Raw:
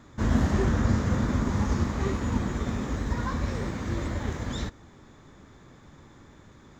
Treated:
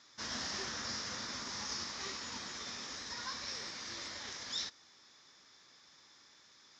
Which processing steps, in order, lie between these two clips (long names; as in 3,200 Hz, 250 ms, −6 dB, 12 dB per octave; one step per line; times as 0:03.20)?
resonant band-pass 5,300 Hz, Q 4.9
high-frequency loss of the air 120 metres
level +17.5 dB